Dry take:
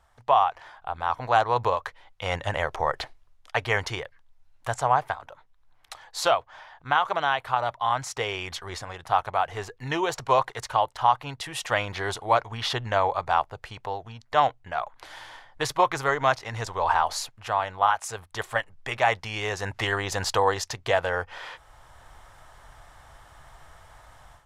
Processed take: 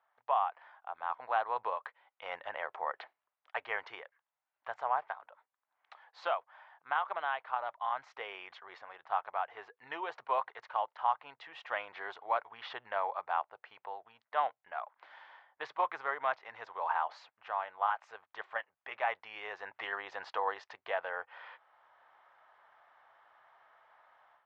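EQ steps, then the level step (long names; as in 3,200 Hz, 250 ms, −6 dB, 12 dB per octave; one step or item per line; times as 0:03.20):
band-pass filter 670–2,500 Hz
high-frequency loss of the air 140 metres
−8.0 dB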